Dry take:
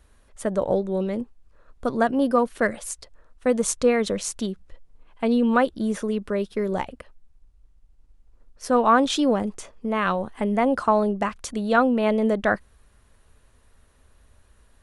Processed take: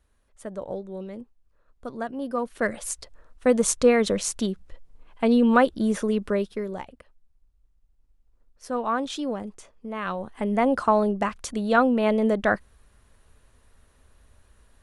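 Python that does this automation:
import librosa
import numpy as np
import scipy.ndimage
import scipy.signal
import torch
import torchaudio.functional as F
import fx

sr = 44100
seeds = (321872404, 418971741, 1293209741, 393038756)

y = fx.gain(x, sr, db=fx.line((2.21, -10.5), (2.89, 1.5), (6.33, 1.5), (6.77, -8.5), (9.93, -8.5), (10.6, -0.5)))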